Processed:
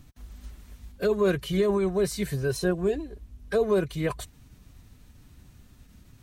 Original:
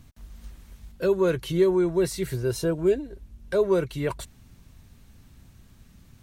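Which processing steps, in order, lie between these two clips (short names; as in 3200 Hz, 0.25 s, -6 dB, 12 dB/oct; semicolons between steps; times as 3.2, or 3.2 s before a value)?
formant-preserving pitch shift +1.5 st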